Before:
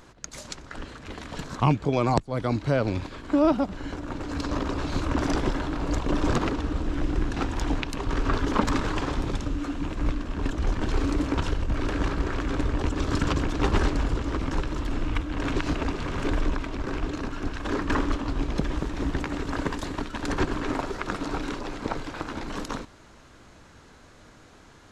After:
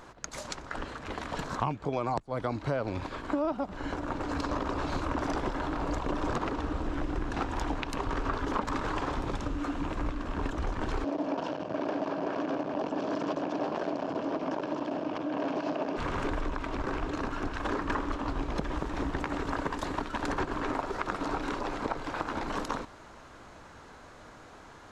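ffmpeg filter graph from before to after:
ffmpeg -i in.wav -filter_complex "[0:a]asettb=1/sr,asplit=3[link_01][link_02][link_03];[link_01]atrim=end=11.044[link_04];[link_02]atrim=start=11.04:end=15.97,asetpts=PTS-STARTPTS,afade=type=in:duration=0.004:curve=qsin,afade=type=out:start_time=4.926:duration=0.004:curve=qsin,asoftclip=type=hard:threshold=-25dB,highpass=frequency=160:width=0.5412,highpass=frequency=160:width=1.3066,equalizer=frequency=290:width_type=q:width=4:gain=4,equalizer=frequency=630:width_type=q:width=4:gain=10,equalizer=frequency=1300:width_type=q:width=4:gain=-6,equalizer=frequency=2000:width_type=q:width=4:gain=-8,equalizer=frequency=3800:width_type=q:width=4:gain=-6,lowpass=frequency=5600:width=0.5412,lowpass=frequency=5600:width=1.3066[link_05];[link_03]atrim=start=15.966[link_06];[link_04][link_05]acrossfade=duration=0.004:curve1=hsin:curve2=qsin[link_07];[link_07][link_06]acrossfade=duration=0.004:curve1=qsin:curve2=hsin,equalizer=frequency=880:width=0.61:gain=8,acompressor=threshold=-26dB:ratio=4,volume=-2.5dB" out.wav

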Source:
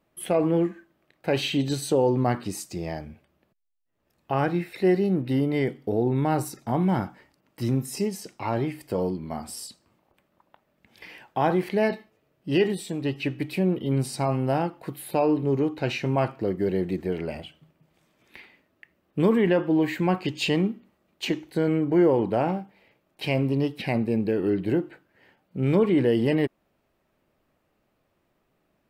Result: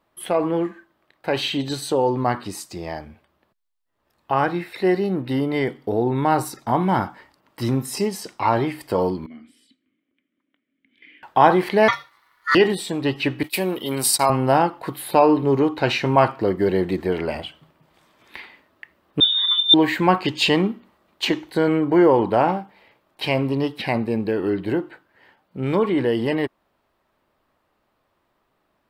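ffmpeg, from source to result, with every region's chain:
ffmpeg -i in.wav -filter_complex "[0:a]asettb=1/sr,asplit=3[link_01][link_02][link_03];[link_01]atrim=end=9.264[link_04];[link_02]atrim=start=9.26:end=11.23,asetpts=PTS-STARTPTS,afade=type=in:duration=0.004:curve=qsin,afade=type=out:start_time=1.966:duration=0.004:curve=qsin,asplit=3[link_05][link_06][link_07];[link_05]bandpass=frequency=270:width_type=q:width=8,volume=0dB[link_08];[link_06]bandpass=frequency=2290:width_type=q:width=8,volume=-6dB[link_09];[link_07]bandpass=frequency=3010:width_type=q:width=8,volume=-9dB[link_10];[link_08][link_09][link_10]amix=inputs=3:normalize=0,equalizer=frequency=5000:width=2:gain=-12[link_11];[link_03]atrim=start=11.226[link_12];[link_04][link_11]acrossfade=duration=0.004:curve1=hsin:curve2=qsin[link_13];[link_13][link_12]acrossfade=duration=0.004:curve1=qsin:curve2=hsin,asettb=1/sr,asplit=3[link_14][link_15][link_16];[link_14]atrim=end=11.884[link_17];[link_15]atrim=start=11.88:end=12.55,asetpts=PTS-STARTPTS,afade=type=in:duration=0.004:curve=qsin,afade=type=out:start_time=0.666:duration=0.004:curve=qsin,highshelf=frequency=2200:gain=8,bandreject=frequency=5400:width=5.5,aeval=exprs='val(0)*sin(2*PI*1600*n/s)':channel_layout=same[link_18];[link_16]atrim=start=12.546[link_19];[link_17][link_18]acrossfade=duration=0.004:curve1=hsin:curve2=qsin[link_20];[link_20][link_19]acrossfade=duration=0.004:curve1=qsin:curve2=hsin,asettb=1/sr,asplit=3[link_21][link_22][link_23];[link_21]atrim=end=13.434[link_24];[link_22]atrim=start=13.43:end=14.3,asetpts=PTS-STARTPTS,afade=type=in:duration=0.004:curve=qsin,afade=type=out:start_time=0.866:duration=0.004:curve=qsin,agate=range=-24dB:threshold=-38dB:ratio=16:release=100:detection=peak,highpass=frequency=380:poles=1,aemphasis=mode=production:type=75fm[link_25];[link_23]atrim=start=14.296[link_26];[link_24][link_25]acrossfade=duration=0.004:curve1=hsin:curve2=qsin[link_27];[link_27][link_26]acrossfade=duration=0.004:curve1=qsin:curve2=hsin,asettb=1/sr,asplit=3[link_28][link_29][link_30];[link_28]atrim=end=19.204[link_31];[link_29]atrim=start=19.2:end=19.74,asetpts=PTS-STARTPTS,afade=type=in:duration=0.004:curve=qsin,afade=type=out:start_time=0.536:duration=0.004:curve=qsin,asplit=3[link_32][link_33][link_34];[link_32]bandpass=frequency=300:width_type=q:width=8,volume=0dB[link_35];[link_33]bandpass=frequency=870:width_type=q:width=8,volume=-6dB[link_36];[link_34]bandpass=frequency=2240:width_type=q:width=8,volume=-9dB[link_37];[link_35][link_36][link_37]amix=inputs=3:normalize=0,lowpass=frequency=3300:width_type=q:width=0.5098,lowpass=frequency=3300:width_type=q:width=0.6013,lowpass=frequency=3300:width_type=q:width=0.9,lowpass=frequency=3300:width_type=q:width=2.563,afreqshift=-3900,aecho=1:1:0.9:0.83,atrim=end_sample=23814[link_38];[link_30]atrim=start=19.736[link_39];[link_31][link_38]acrossfade=duration=0.004:curve1=hsin:curve2=qsin[link_40];[link_40][link_39]acrossfade=duration=0.004:curve1=qsin:curve2=hsin,equalizer=frequency=160:width_type=o:width=0.67:gain=-4,equalizer=frequency=1000:width_type=o:width=0.67:gain=6,equalizer=frequency=2500:width_type=o:width=0.67:gain=-6,equalizer=frequency=6300:width_type=o:width=0.67:gain=-4,dynaudnorm=framelen=430:gausssize=31:maxgain=6.5dB,equalizer=frequency=2900:width=0.48:gain=7.5" out.wav

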